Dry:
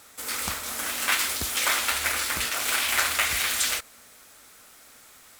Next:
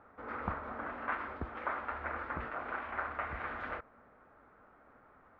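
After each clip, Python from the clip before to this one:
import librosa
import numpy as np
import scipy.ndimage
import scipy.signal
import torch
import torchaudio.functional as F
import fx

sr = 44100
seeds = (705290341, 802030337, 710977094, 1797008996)

y = scipy.signal.sosfilt(scipy.signal.butter(4, 1400.0, 'lowpass', fs=sr, output='sos'), x)
y = fx.rider(y, sr, range_db=3, speed_s=0.5)
y = y * 10.0 ** (-4.0 / 20.0)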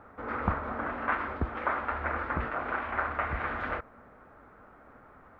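y = fx.low_shelf(x, sr, hz=230.0, db=4.5)
y = y * 10.0 ** (6.5 / 20.0)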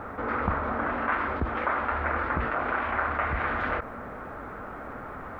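y = fx.env_flatten(x, sr, amount_pct=50)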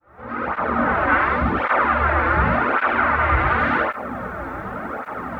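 y = fx.fade_in_head(x, sr, length_s=0.81)
y = fx.rev_gated(y, sr, seeds[0], gate_ms=170, shape='flat', drr_db=-5.0)
y = fx.flanger_cancel(y, sr, hz=0.89, depth_ms=5.1)
y = y * 10.0 ** (6.5 / 20.0)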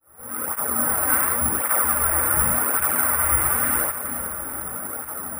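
y = fx.echo_feedback(x, sr, ms=428, feedback_pct=55, wet_db=-12)
y = (np.kron(scipy.signal.resample_poly(y, 1, 4), np.eye(4)[0]) * 4)[:len(y)]
y = y * 10.0 ** (-8.5 / 20.0)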